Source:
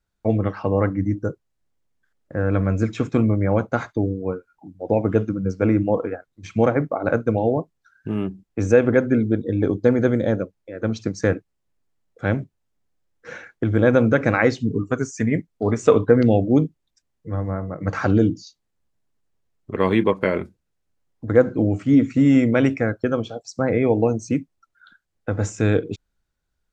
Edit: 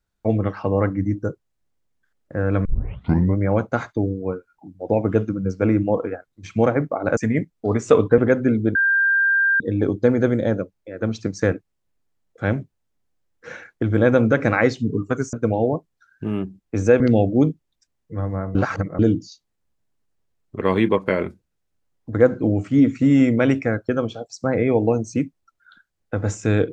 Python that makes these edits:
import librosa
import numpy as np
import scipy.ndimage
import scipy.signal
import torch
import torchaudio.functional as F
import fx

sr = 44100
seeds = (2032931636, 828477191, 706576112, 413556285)

y = fx.edit(x, sr, fx.tape_start(start_s=2.65, length_s=0.72),
    fx.swap(start_s=7.17, length_s=1.67, other_s=15.14, other_length_s=1.01),
    fx.insert_tone(at_s=9.41, length_s=0.85, hz=1590.0, db=-14.5),
    fx.reverse_span(start_s=17.7, length_s=0.44), tone=tone)